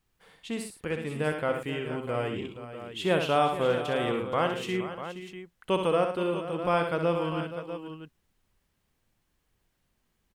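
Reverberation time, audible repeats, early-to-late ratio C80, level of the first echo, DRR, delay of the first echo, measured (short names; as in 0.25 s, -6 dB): none, 5, none, -6.5 dB, none, 65 ms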